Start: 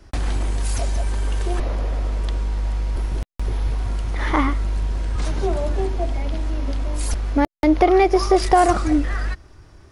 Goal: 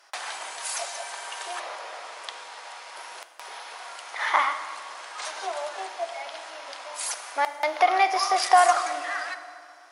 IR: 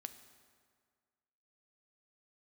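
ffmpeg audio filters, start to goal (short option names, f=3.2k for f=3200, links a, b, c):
-filter_complex "[0:a]highpass=f=730:w=0.5412,highpass=f=730:w=1.3066[a];[1:a]atrim=start_sample=2205,asetrate=36162,aresample=44100[b];[a][b]afir=irnorm=-1:irlink=0,volume=5.5dB"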